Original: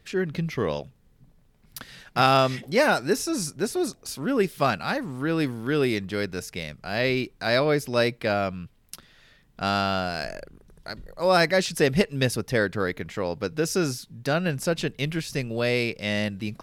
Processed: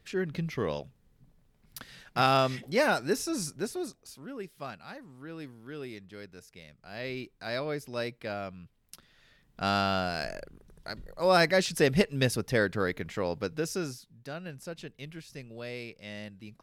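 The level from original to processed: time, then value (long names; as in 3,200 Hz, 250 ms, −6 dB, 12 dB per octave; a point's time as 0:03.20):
0:03.52 −5 dB
0:04.37 −17.5 dB
0:06.56 −17.5 dB
0:07.24 −11.5 dB
0:08.56 −11.5 dB
0:09.69 −3 dB
0:13.36 −3 dB
0:14.28 −15.5 dB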